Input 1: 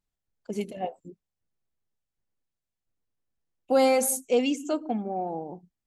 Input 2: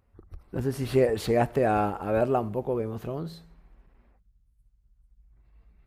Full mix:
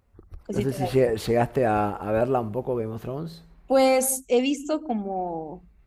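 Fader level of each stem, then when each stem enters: +2.0 dB, +1.5 dB; 0.00 s, 0.00 s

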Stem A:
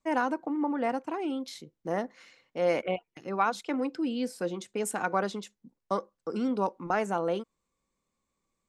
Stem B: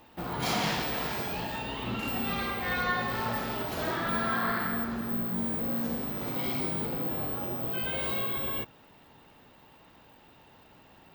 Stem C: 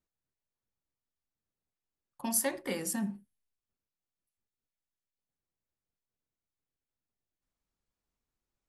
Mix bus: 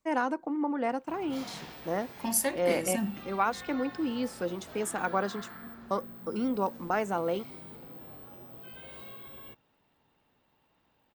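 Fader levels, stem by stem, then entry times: -1.0 dB, -15.0 dB, +2.0 dB; 0.00 s, 0.90 s, 0.00 s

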